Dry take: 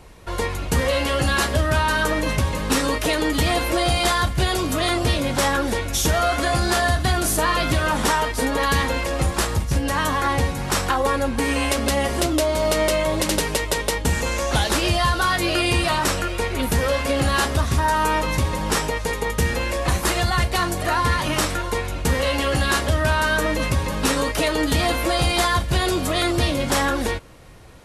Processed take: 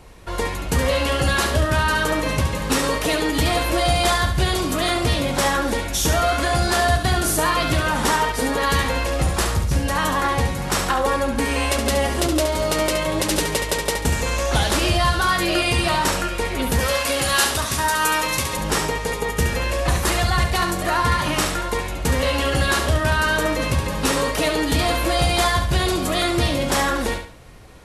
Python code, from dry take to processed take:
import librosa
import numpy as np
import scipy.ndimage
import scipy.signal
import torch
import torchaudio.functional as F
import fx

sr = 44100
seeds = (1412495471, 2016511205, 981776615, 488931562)

y = fx.tilt_eq(x, sr, slope=2.5, at=(16.8, 18.57))
y = fx.echo_feedback(y, sr, ms=70, feedback_pct=31, wet_db=-7.0)